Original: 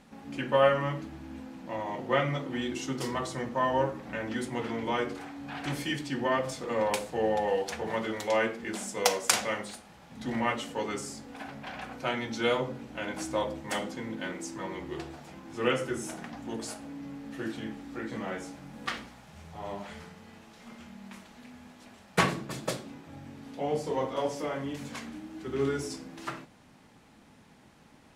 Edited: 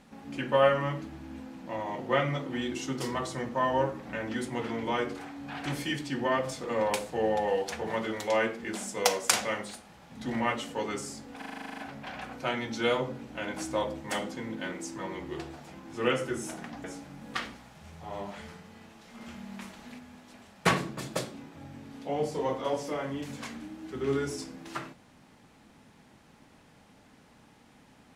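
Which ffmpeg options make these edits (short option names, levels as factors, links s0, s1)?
-filter_complex "[0:a]asplit=14[s0][s1][s2][s3][s4][s5][s6][s7][s8][s9][s10][s11][s12][s13];[s0]atrim=end=11.422[s14];[s1]atrim=start=11.378:end=11.422[s15];[s2]atrim=start=11.378:end=11.422[s16];[s3]atrim=start=11.378:end=11.422[s17];[s4]atrim=start=11.378:end=11.422[s18];[s5]atrim=start=11.378:end=11.422[s19];[s6]atrim=start=11.378:end=11.422[s20];[s7]atrim=start=11.378:end=11.422[s21];[s8]atrim=start=11.378:end=11.422[s22];[s9]atrim=start=11.378:end=11.422[s23];[s10]atrim=start=11.378:end=16.442[s24];[s11]atrim=start=18.358:end=20.732[s25];[s12]atrim=start=20.728:end=21.512,asetpts=PTS-STARTPTS,volume=1.58[s26];[s13]atrim=start=21.508[s27];[s14][s15]acrossfade=d=0.004:c1=hsin:c2=hsin[s28];[s28][s16]acrossfade=d=0.004:c1=hsin:c2=hsin[s29];[s29][s17]acrossfade=d=0.004:c1=hsin:c2=hsin[s30];[s30][s18]acrossfade=d=0.004:c1=hsin:c2=hsin[s31];[s31][s19]acrossfade=d=0.004:c1=hsin:c2=hsin[s32];[s32][s20]acrossfade=d=0.004:c1=hsin:c2=hsin[s33];[s33][s21]acrossfade=d=0.004:c1=hsin:c2=hsin[s34];[s34][s22]acrossfade=d=0.004:c1=hsin:c2=hsin[s35];[s35][s23]acrossfade=d=0.004:c1=hsin:c2=hsin[s36];[s36][s24]acrossfade=d=0.004:c1=hsin:c2=hsin[s37];[s37][s25]acrossfade=d=0.004:c1=hsin:c2=hsin[s38];[s38][s26]acrossfade=d=0.004:c1=hsin:c2=hsin[s39];[s39][s27]acrossfade=d=0.004:c1=hsin:c2=hsin"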